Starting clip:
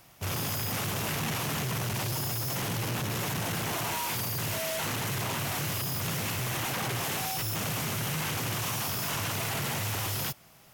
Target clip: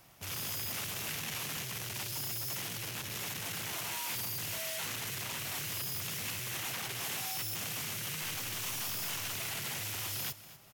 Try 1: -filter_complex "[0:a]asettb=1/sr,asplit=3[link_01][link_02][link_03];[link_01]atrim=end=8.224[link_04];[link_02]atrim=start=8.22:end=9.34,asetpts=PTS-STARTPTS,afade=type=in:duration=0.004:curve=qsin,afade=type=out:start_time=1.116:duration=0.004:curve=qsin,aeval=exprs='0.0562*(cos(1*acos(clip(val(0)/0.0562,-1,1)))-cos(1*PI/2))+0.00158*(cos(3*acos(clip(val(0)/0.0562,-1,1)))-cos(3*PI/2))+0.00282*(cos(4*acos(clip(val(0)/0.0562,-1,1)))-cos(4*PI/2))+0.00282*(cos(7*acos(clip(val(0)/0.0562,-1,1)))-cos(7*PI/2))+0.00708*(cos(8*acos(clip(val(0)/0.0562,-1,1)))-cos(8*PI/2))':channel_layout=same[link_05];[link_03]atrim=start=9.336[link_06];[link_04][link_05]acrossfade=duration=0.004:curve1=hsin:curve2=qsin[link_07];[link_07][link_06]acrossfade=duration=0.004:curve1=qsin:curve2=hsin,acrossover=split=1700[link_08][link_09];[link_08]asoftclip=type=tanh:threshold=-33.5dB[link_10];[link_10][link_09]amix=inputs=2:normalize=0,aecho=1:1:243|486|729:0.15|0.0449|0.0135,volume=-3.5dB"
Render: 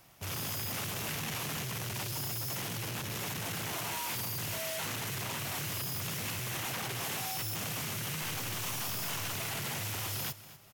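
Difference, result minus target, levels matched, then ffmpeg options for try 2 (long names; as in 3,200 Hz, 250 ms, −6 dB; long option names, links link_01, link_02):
soft clipping: distortion −6 dB
-filter_complex "[0:a]asettb=1/sr,asplit=3[link_01][link_02][link_03];[link_01]atrim=end=8.224[link_04];[link_02]atrim=start=8.22:end=9.34,asetpts=PTS-STARTPTS,afade=type=in:duration=0.004:curve=qsin,afade=type=out:start_time=1.116:duration=0.004:curve=qsin,aeval=exprs='0.0562*(cos(1*acos(clip(val(0)/0.0562,-1,1)))-cos(1*PI/2))+0.00158*(cos(3*acos(clip(val(0)/0.0562,-1,1)))-cos(3*PI/2))+0.00282*(cos(4*acos(clip(val(0)/0.0562,-1,1)))-cos(4*PI/2))+0.00282*(cos(7*acos(clip(val(0)/0.0562,-1,1)))-cos(7*PI/2))+0.00708*(cos(8*acos(clip(val(0)/0.0562,-1,1)))-cos(8*PI/2))':channel_layout=same[link_05];[link_03]atrim=start=9.336[link_06];[link_04][link_05]acrossfade=duration=0.004:curve1=hsin:curve2=qsin[link_07];[link_07][link_06]acrossfade=duration=0.004:curve1=qsin:curve2=hsin,acrossover=split=1700[link_08][link_09];[link_08]asoftclip=type=tanh:threshold=-41.5dB[link_10];[link_10][link_09]amix=inputs=2:normalize=0,aecho=1:1:243|486|729:0.15|0.0449|0.0135,volume=-3.5dB"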